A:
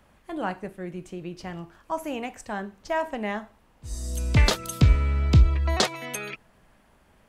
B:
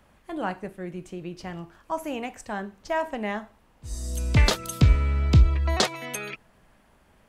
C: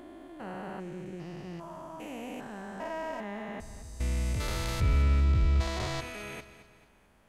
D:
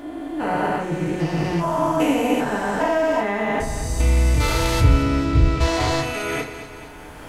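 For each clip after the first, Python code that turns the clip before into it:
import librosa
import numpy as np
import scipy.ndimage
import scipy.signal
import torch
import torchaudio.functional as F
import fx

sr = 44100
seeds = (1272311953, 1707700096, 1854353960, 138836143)

y1 = x
y2 = fx.spec_steps(y1, sr, hold_ms=400)
y2 = fx.echo_feedback(y2, sr, ms=220, feedback_pct=44, wet_db=-14)
y2 = y2 * librosa.db_to_amplitude(-2.5)
y3 = fx.recorder_agc(y2, sr, target_db=-24.0, rise_db_per_s=11.0, max_gain_db=30)
y3 = fx.rev_fdn(y3, sr, rt60_s=0.44, lf_ratio=0.75, hf_ratio=0.65, size_ms=20.0, drr_db=-2.0)
y3 = y3 * librosa.db_to_amplitude(8.5)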